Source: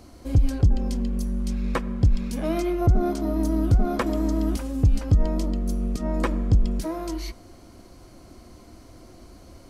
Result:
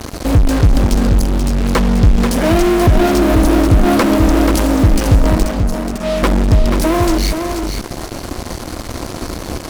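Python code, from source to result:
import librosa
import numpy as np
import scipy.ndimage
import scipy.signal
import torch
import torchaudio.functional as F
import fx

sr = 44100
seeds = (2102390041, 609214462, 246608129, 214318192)

p1 = fx.peak_eq(x, sr, hz=760.0, db=-11.0, octaves=1.7, at=(1.15, 1.61))
p2 = fx.comb_fb(p1, sr, f0_hz=210.0, decay_s=0.52, harmonics='odd', damping=0.0, mix_pct=90, at=(5.43, 6.23))
p3 = fx.fuzz(p2, sr, gain_db=46.0, gate_db=-45.0)
p4 = p2 + (p3 * librosa.db_to_amplitude(-6.0))
p5 = p4 + 10.0 ** (-6.5 / 20.0) * np.pad(p4, (int(484 * sr / 1000.0), 0))[:len(p4)]
y = p5 * librosa.db_to_amplitude(4.0)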